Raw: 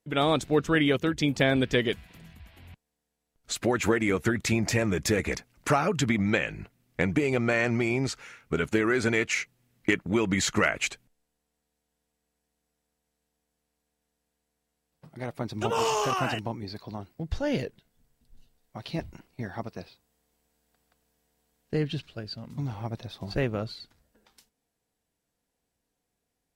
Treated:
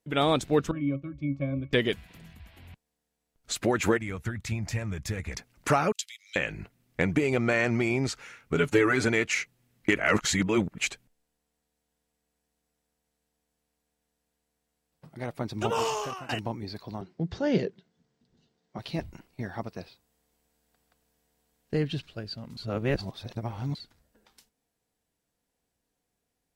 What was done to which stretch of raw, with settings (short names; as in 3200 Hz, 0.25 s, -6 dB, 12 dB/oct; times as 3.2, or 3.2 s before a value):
0.71–1.73 octave resonator C#, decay 0.15 s
3.97–5.37 EQ curve 100 Hz 0 dB, 360 Hz -15 dB, 860 Hz -9 dB
5.92–6.36 inverse Chebyshev high-pass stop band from 760 Hz, stop band 70 dB
8.55–9.05 comb 6.9 ms, depth 89%
9.96–10.78 reverse
15.7–16.29 fade out, to -21 dB
17.01–18.79 speaker cabinet 130–6300 Hz, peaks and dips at 180 Hz +10 dB, 380 Hz +9 dB, 2600 Hz -3 dB
22.57–23.75 reverse